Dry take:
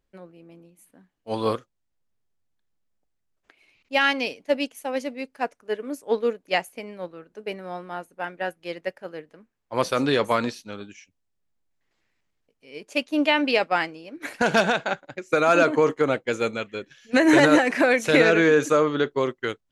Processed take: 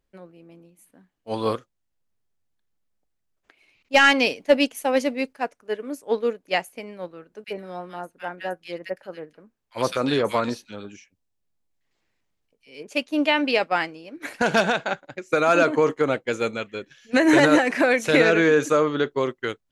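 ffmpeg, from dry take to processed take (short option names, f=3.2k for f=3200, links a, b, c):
-filter_complex "[0:a]asettb=1/sr,asplit=3[a][b][c];[a]atrim=end=3.944[d];[b]atrim=start=3.94:end=5.33,asetpts=PTS-STARTPTS,afade=t=in:d=0.004:c=qsin,afade=t=out:st=1.386:d=0.004:c=qsin,aeval=exprs='0.473*sin(PI/2*1.41*val(0)/0.473)':c=same[e];[c]atrim=start=5.326[f];[d][e]acrossfade=d=0.004:c1=hsin:c2=qsin[g];[g][f]acrossfade=d=0.004:c1=qsin:c2=hsin,asettb=1/sr,asplit=3[h][i][j];[h]atrim=end=7.444[k];[i]atrim=start=7.44:end=12.91,asetpts=PTS-STARTPTS,afade=t=in:d=0.004:c=qsin,afade=t=out:st=5.466:d=0.004:c=qsin,acrossover=split=1700[l][m];[l]adelay=40[n];[n][m]amix=inputs=2:normalize=0,atrim=end_sample=241227[o];[j]atrim=start=12.906[p];[k][o]acrossfade=d=0.004:c1=hsin:c2=qsin[q];[q][p]acrossfade=d=0.004:c1=qsin:c2=hsin"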